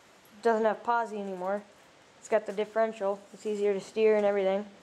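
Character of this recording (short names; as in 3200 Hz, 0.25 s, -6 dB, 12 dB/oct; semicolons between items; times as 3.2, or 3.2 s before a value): noise floor -58 dBFS; spectral tilt -4.0 dB/oct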